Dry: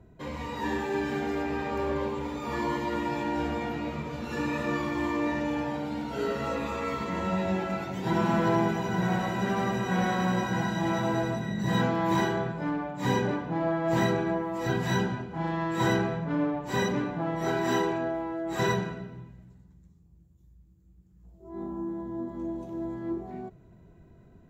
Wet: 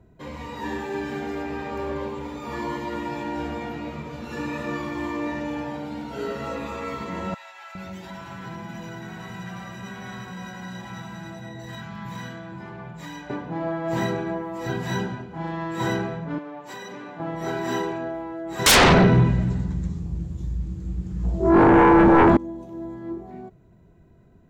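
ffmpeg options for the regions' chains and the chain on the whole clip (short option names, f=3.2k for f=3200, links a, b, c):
-filter_complex "[0:a]asettb=1/sr,asplit=3[a][b][c];[a]atrim=end=7.344[d];[b]atrim=start=7.34:end=13.3,asetpts=PTS-STARTPTS,afade=t=in:d=0.004:c=qsin,afade=t=out:st=5.956:d=0.004:c=qsin,equalizer=f=390:w=0.83:g=-9,acompressor=threshold=-34dB:ratio=2.5:attack=3.2:release=140:knee=1:detection=peak,acrossover=split=770[e][f];[e]adelay=410[g];[g][f]amix=inputs=2:normalize=0,atrim=end_sample=262836[h];[c]atrim=start=13.296[i];[d][h]acrossfade=d=0.004:c1=hsin:c2=qsin[j];[j][i]acrossfade=d=0.004:c1=qsin:c2=hsin,asettb=1/sr,asplit=3[k][l][m];[k]atrim=end=16.384[n];[l]atrim=start=16.38:end=17.2,asetpts=PTS-STARTPTS,afade=t=in:d=0.004:c=qsin,afade=t=out:st=0.816:d=0.004:c=qsin,highpass=f=580:p=1,acompressor=threshold=-33dB:ratio=10:attack=3.2:release=140:knee=1:detection=peak[o];[m]atrim=start=17.196[p];[n][o]acrossfade=d=0.004:c1=hsin:c2=qsin[q];[q][p]acrossfade=d=0.004:c1=qsin:c2=hsin,asettb=1/sr,asplit=3[r][s][t];[r]atrim=end=18.664[u];[s]atrim=start=18.66:end=22.37,asetpts=PTS-STARTPTS,afade=t=in:d=0.004:c=qsin,afade=t=out:st=3.706:d=0.004:c=qsin,lowpass=6.2k,aeval=exprs='0.168*sin(PI/2*10*val(0)/0.168)':c=same,acontrast=31[v];[t]atrim=start=22.366[w];[u][v]acrossfade=d=0.004:c1=hsin:c2=qsin[x];[x][w]acrossfade=d=0.004:c1=qsin:c2=hsin"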